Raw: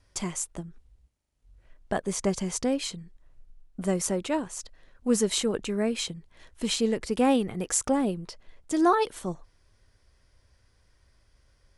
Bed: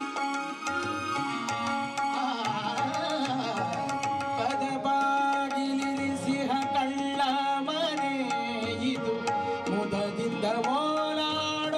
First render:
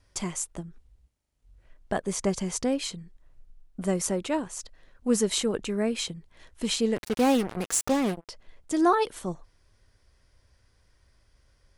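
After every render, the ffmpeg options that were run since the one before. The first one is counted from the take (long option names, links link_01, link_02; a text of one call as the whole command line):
ffmpeg -i in.wav -filter_complex "[0:a]asettb=1/sr,asplit=3[link_01][link_02][link_03];[link_01]atrim=end=6.964[link_04];[link_02]atrim=start=6.96:end=8.29,asetpts=PTS-STARTPTS,afade=type=in:duration=0.004:curve=qsin,afade=type=out:start_time=1.326:duration=0.004:curve=qsin,acrusher=bits=4:mix=0:aa=0.5[link_05];[link_03]atrim=start=8.286[link_06];[link_04][link_05]acrossfade=duration=0.004:curve1=hsin:curve2=qsin[link_07];[link_07][link_06]acrossfade=duration=0.004:curve1=qsin:curve2=hsin" out.wav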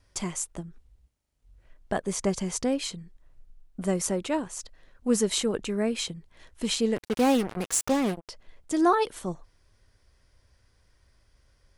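ffmpeg -i in.wav -filter_complex "[0:a]asettb=1/sr,asplit=3[link_01][link_02][link_03];[link_01]atrim=end=6.754[link_04];[link_02]atrim=start=6.75:end=8.27,asetpts=PTS-STARTPTS,afade=type=in:duration=0.004:curve=qsin,afade=type=out:start_time=1.516:duration=0.004:curve=qsin,agate=range=-31dB:threshold=-43dB:ratio=16:release=100:detection=peak[link_05];[link_03]atrim=start=8.266[link_06];[link_04][link_05]acrossfade=duration=0.004:curve1=hsin:curve2=qsin[link_07];[link_07][link_06]acrossfade=duration=0.004:curve1=qsin:curve2=hsin" out.wav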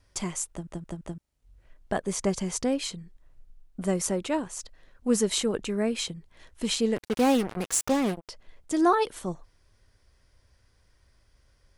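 ffmpeg -i in.wav -filter_complex "[0:a]asplit=5[link_01][link_02][link_03][link_04][link_05];[link_01]atrim=end=0.672[link_06];[link_02]atrim=start=0.498:end=0.672[link_07];[link_03]atrim=start=0.498:end=0.672[link_08];[link_04]atrim=start=0.498:end=0.672[link_09];[link_05]atrim=start=1.178[link_10];[link_06][link_07]acrossfade=duration=0.004:curve1=hsin:curve2=hsin[link_11];[link_11][link_08]acrossfade=duration=0.004:curve1=hsin:curve2=hsin[link_12];[link_12][link_09]acrossfade=duration=0.004:curve1=hsin:curve2=hsin[link_13];[link_13][link_10]acrossfade=duration=0.004:curve1=hsin:curve2=hsin" out.wav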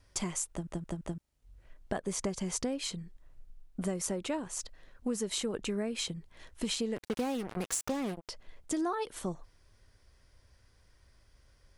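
ffmpeg -i in.wav -af "acompressor=threshold=-30dB:ratio=8" out.wav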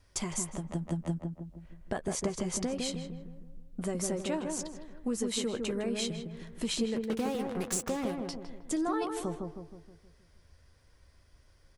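ffmpeg -i in.wav -filter_complex "[0:a]asplit=2[link_01][link_02];[link_02]adelay=13,volume=-12dB[link_03];[link_01][link_03]amix=inputs=2:normalize=0,asplit=2[link_04][link_05];[link_05]adelay=158,lowpass=frequency=1100:poles=1,volume=-3dB,asplit=2[link_06][link_07];[link_07]adelay=158,lowpass=frequency=1100:poles=1,volume=0.52,asplit=2[link_08][link_09];[link_09]adelay=158,lowpass=frequency=1100:poles=1,volume=0.52,asplit=2[link_10][link_11];[link_11]adelay=158,lowpass=frequency=1100:poles=1,volume=0.52,asplit=2[link_12][link_13];[link_13]adelay=158,lowpass=frequency=1100:poles=1,volume=0.52,asplit=2[link_14][link_15];[link_15]adelay=158,lowpass=frequency=1100:poles=1,volume=0.52,asplit=2[link_16][link_17];[link_17]adelay=158,lowpass=frequency=1100:poles=1,volume=0.52[link_18];[link_06][link_08][link_10][link_12][link_14][link_16][link_18]amix=inputs=7:normalize=0[link_19];[link_04][link_19]amix=inputs=2:normalize=0" out.wav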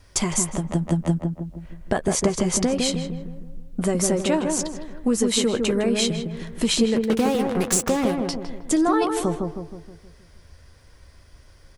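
ffmpeg -i in.wav -af "volume=11.5dB" out.wav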